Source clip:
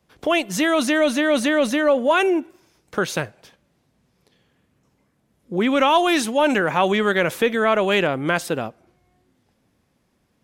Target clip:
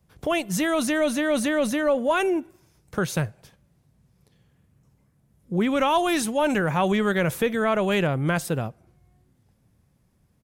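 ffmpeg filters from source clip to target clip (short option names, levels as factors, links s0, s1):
-af "firequalizer=gain_entry='entry(140,0);entry(250,-11);entry(3100,-14);entry(9700,-6)':delay=0.05:min_phase=1,volume=2.24"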